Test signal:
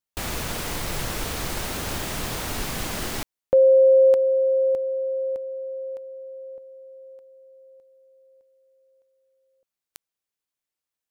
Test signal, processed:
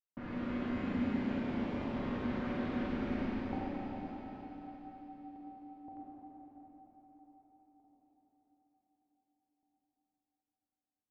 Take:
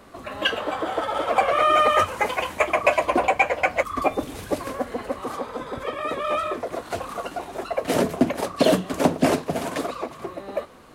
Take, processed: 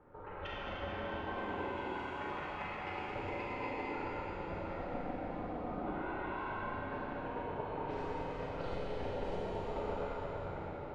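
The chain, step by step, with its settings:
phase distortion by the signal itself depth 0.059 ms
low-pass that shuts in the quiet parts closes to 1,100 Hz, open at −15 dBFS
downward compressor 6 to 1, threshold −31 dBFS
auto-filter notch saw up 0.51 Hz 430–1,700 Hz
tuned comb filter 330 Hz, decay 0.38 s, harmonics all, mix 80%
delay that swaps between a low-pass and a high-pass 110 ms, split 960 Hz, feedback 80%, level −5 dB
ring modulation 240 Hz
head-to-tape spacing loss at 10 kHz 23 dB
four-comb reverb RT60 3.9 s, combs from 33 ms, DRR −6 dB
level +5.5 dB

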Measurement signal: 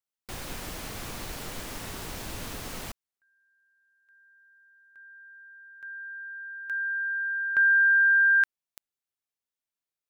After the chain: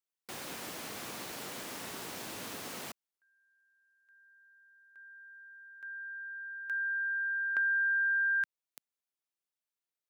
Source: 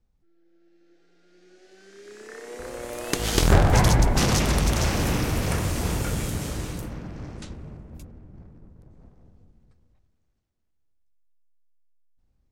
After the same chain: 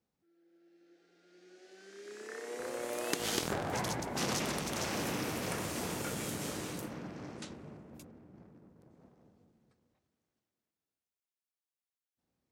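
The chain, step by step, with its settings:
downward compressor 3 to 1, threshold −27 dBFS
high-pass filter 200 Hz 12 dB per octave
level −3 dB

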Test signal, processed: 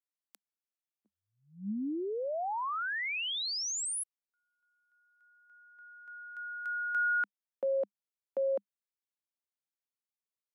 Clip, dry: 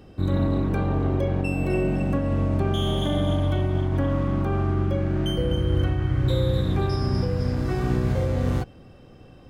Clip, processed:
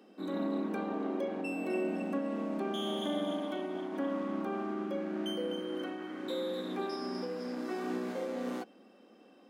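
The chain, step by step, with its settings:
Chebyshev high-pass filter 200 Hz, order 6
level −7 dB

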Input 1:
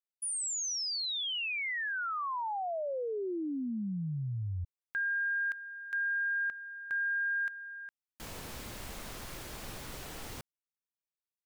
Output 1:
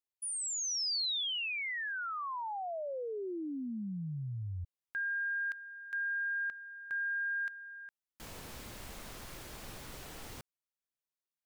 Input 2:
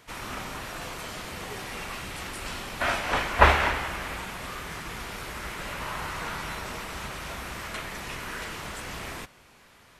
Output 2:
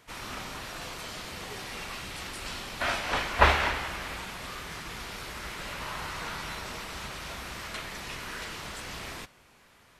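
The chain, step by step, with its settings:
dynamic equaliser 4,400 Hz, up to +5 dB, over −48 dBFS, Q 1.1
level −3.5 dB

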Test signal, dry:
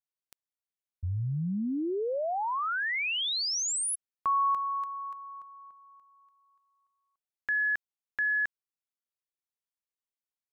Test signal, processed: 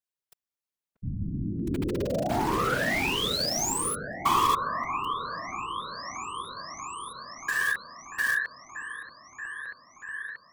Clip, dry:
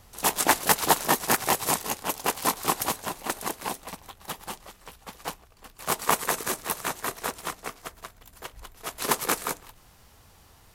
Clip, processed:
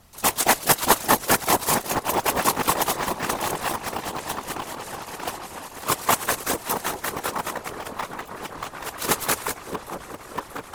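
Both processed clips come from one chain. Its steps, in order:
echo whose low-pass opens from repeat to repeat 634 ms, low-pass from 750 Hz, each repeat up 1 octave, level −3 dB
in parallel at −7 dB: bit reduction 4 bits
on the sum: random phases in short frames

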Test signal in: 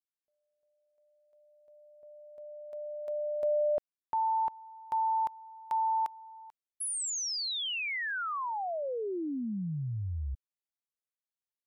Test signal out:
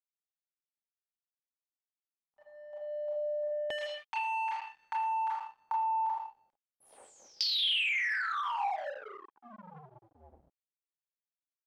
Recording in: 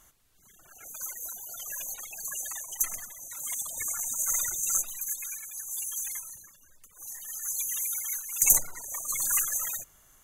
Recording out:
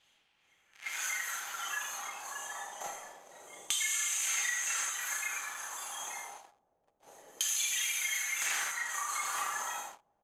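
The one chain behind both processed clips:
guitar amp tone stack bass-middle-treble 10-0-10
comb filter 5.2 ms, depth 97%
single-tap delay 79 ms −8.5 dB
four-comb reverb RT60 0.42 s, combs from 26 ms, DRR −5.5 dB
leveller curve on the samples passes 5
first difference
bit reduction 11 bits
auto-filter low-pass saw down 0.27 Hz 470–3,200 Hz
downward compressor 4 to 1, threshold −34 dBFS
hollow resonant body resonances 820/3,200 Hz, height 8 dB
level +2 dB

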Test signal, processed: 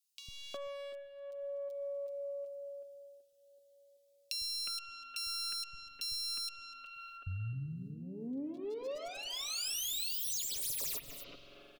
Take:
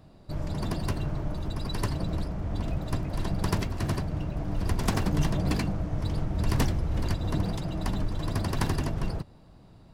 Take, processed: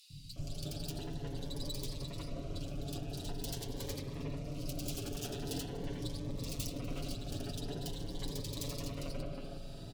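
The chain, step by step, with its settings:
phase distortion by the signal itself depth 0.34 ms
on a send: single-tap delay 245 ms −21.5 dB
on the sum: harmonic generator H 6 −13 dB, 7 −8 dB, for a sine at −10.5 dBFS
tilt shelving filter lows −4.5 dB, about 670 Hz
in parallel at −9.5 dB: comparator with hysteresis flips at −25.5 dBFS
on the sum: comb filter 7.1 ms, depth 75%
spring reverb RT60 2 s, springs 44 ms, chirp 35 ms, DRR 10 dB
hard clipping −21 dBFS
downward compressor 6 to 1, threshold −40 dBFS
flat-topped bell 1,300 Hz −10.5 dB
three-band delay without the direct sound highs, lows, mids 100/360 ms, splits 180/2,500 Hz
phaser whose notches keep moving one way rising 0.45 Hz
level +3.5 dB

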